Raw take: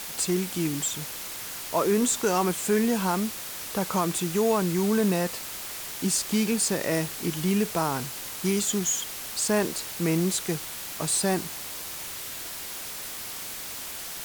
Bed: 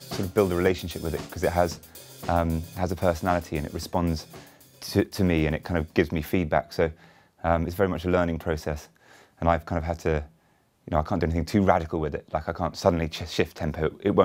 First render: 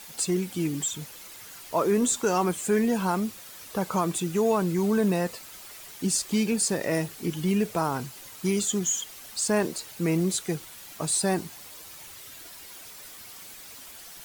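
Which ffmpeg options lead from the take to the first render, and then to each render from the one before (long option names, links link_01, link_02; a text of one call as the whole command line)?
ffmpeg -i in.wav -af "afftdn=noise_reduction=10:noise_floor=-37" out.wav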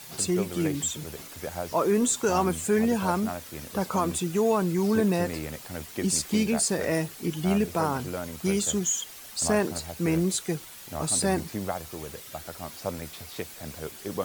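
ffmpeg -i in.wav -i bed.wav -filter_complex "[1:a]volume=-11.5dB[link_01];[0:a][link_01]amix=inputs=2:normalize=0" out.wav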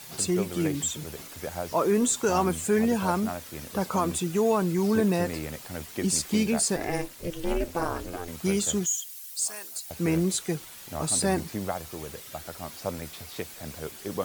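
ffmpeg -i in.wav -filter_complex "[0:a]asettb=1/sr,asplit=3[link_01][link_02][link_03];[link_01]atrim=end=6.764[link_04];[link_02]atrim=start=6.76:end=8.28,asetpts=PTS-STARTPTS,afade=type=in:duration=0.004:curve=qsin,afade=type=out:start_time=1.516:duration=0.004:curve=qsin,aeval=exprs='val(0)*sin(2*PI*170*n/s)':channel_layout=same[link_05];[link_03]atrim=start=8.276[link_06];[link_04][link_05]acrossfade=duration=0.004:curve1=hsin:curve2=qsin[link_07];[link_07][link_06]acrossfade=duration=0.004:curve1=qsin:curve2=hsin,asettb=1/sr,asplit=3[link_08][link_09][link_10];[link_08]atrim=end=8.864[link_11];[link_09]atrim=start=8.86:end=9.91,asetpts=PTS-STARTPTS,afade=type=in:duration=0.004:curve=qsin,afade=type=out:start_time=1.046:duration=0.004:curve=qsin,aderivative[link_12];[link_10]atrim=start=9.906[link_13];[link_11][link_12]acrossfade=duration=0.004:curve1=hsin:curve2=qsin[link_14];[link_14][link_13]acrossfade=duration=0.004:curve1=qsin:curve2=hsin" out.wav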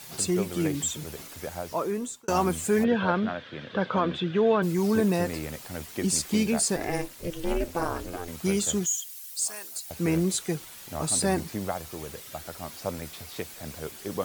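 ffmpeg -i in.wav -filter_complex "[0:a]asplit=3[link_01][link_02][link_03];[link_01]afade=type=out:start_time=2.83:duration=0.02[link_04];[link_02]highpass=frequency=110:width=0.5412,highpass=frequency=110:width=1.3066,equalizer=frequency=110:width_type=q:width=4:gain=8,equalizer=frequency=520:width_type=q:width=4:gain=5,equalizer=frequency=830:width_type=q:width=4:gain=-3,equalizer=frequency=1600:width_type=q:width=4:gain=9,equalizer=frequency=3400:width_type=q:width=4:gain=9,lowpass=frequency=3600:width=0.5412,lowpass=frequency=3600:width=1.3066,afade=type=in:start_time=2.83:duration=0.02,afade=type=out:start_time=4.62:duration=0.02[link_05];[link_03]afade=type=in:start_time=4.62:duration=0.02[link_06];[link_04][link_05][link_06]amix=inputs=3:normalize=0,asplit=2[link_07][link_08];[link_07]atrim=end=2.28,asetpts=PTS-STARTPTS,afade=type=out:start_time=1.14:duration=1.14:curve=qsin[link_09];[link_08]atrim=start=2.28,asetpts=PTS-STARTPTS,afade=type=in:duration=0.004:curve=hsin[link_10];[link_09][link_10]concat=n=2:v=0:a=1" out.wav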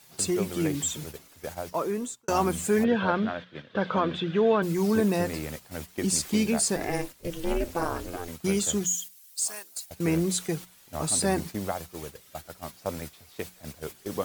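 ffmpeg -i in.wav -af "agate=range=-11dB:threshold=-37dB:ratio=16:detection=peak,bandreject=frequency=60:width_type=h:width=6,bandreject=frequency=120:width_type=h:width=6,bandreject=frequency=180:width_type=h:width=6" out.wav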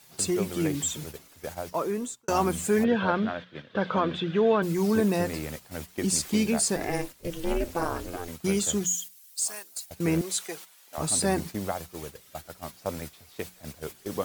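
ffmpeg -i in.wav -filter_complex "[0:a]asettb=1/sr,asplit=3[link_01][link_02][link_03];[link_01]atrim=end=10.214[link_04];[link_02]atrim=start=10.21:end=10.98,asetpts=PTS-STARTPTS,afade=type=in:duration=0.004:curve=qsin,afade=type=out:start_time=0.766:duration=0.004:curve=qsin,highpass=560[link_05];[link_03]atrim=start=10.976[link_06];[link_04][link_05]acrossfade=duration=0.004:curve1=hsin:curve2=qsin[link_07];[link_07][link_06]acrossfade=duration=0.004:curve1=qsin:curve2=hsin" out.wav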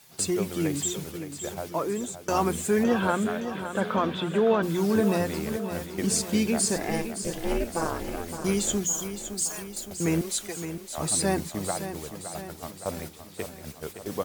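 ffmpeg -i in.wav -af "aecho=1:1:565|1130|1695|2260|2825|3390|3955:0.316|0.18|0.103|0.0586|0.0334|0.019|0.0108" out.wav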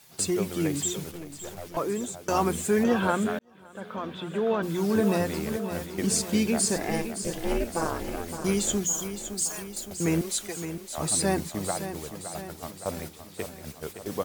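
ffmpeg -i in.wav -filter_complex "[0:a]asettb=1/sr,asplit=3[link_01][link_02][link_03];[link_01]atrim=end=1.114[link_04];[link_02]atrim=start=1.11:end=1.77,asetpts=PTS-STARTPTS,afade=type=in:duration=0.004:curve=qsin,afade=type=out:start_time=0.656:duration=0.004:curve=qsin,aeval=exprs='(tanh(44.7*val(0)+0.65)-tanh(0.65))/44.7':channel_layout=same[link_05];[link_03]atrim=start=1.766[link_06];[link_04][link_05]acrossfade=duration=0.004:curve1=hsin:curve2=qsin[link_07];[link_07][link_06]acrossfade=duration=0.004:curve1=qsin:curve2=hsin,asplit=2[link_08][link_09];[link_08]atrim=end=3.39,asetpts=PTS-STARTPTS,afade=type=out:start_time=3.386:duration=0.004:curve=hsin[link_10];[link_09]atrim=start=3.39,asetpts=PTS-STARTPTS,afade=type=in:duration=1.73[link_11];[link_10][link_11]concat=n=2:v=0:a=1" out.wav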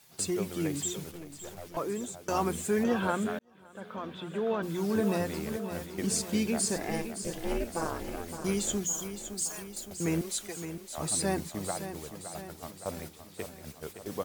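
ffmpeg -i in.wav -af "volume=-4.5dB" out.wav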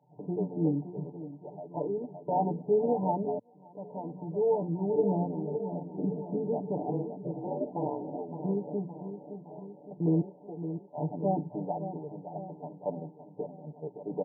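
ffmpeg -i in.wav -af "afftfilt=real='re*between(b*sr/4096,110,1000)':imag='im*between(b*sr/4096,110,1000)':win_size=4096:overlap=0.75,aecho=1:1:6.8:0.94" out.wav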